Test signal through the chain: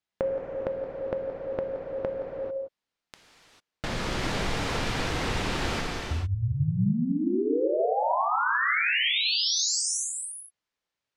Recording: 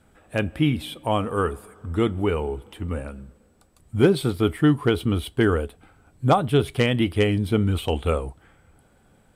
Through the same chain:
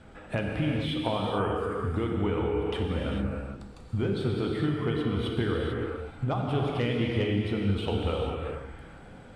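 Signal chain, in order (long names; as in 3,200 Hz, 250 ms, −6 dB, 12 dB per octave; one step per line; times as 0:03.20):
low-pass filter 4,700 Hz 12 dB per octave
downward compressor 8 to 1, threshold −35 dBFS
reverb whose tail is shaped and stops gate 470 ms flat, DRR −1.5 dB
level +7 dB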